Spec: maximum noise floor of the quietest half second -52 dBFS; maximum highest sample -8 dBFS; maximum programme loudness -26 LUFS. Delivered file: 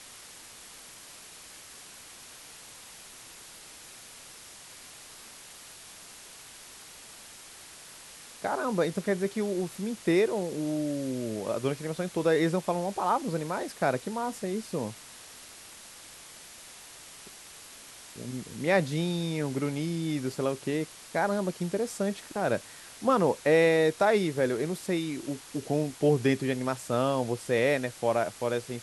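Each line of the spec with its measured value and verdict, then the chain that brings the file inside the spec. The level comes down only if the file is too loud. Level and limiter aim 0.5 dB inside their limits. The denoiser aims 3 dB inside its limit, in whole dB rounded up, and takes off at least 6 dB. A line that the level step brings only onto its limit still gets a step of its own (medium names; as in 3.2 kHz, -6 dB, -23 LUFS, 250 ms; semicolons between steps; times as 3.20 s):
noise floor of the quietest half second -49 dBFS: fail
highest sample -11.5 dBFS: pass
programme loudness -29.0 LUFS: pass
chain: noise reduction 6 dB, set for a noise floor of -49 dBFS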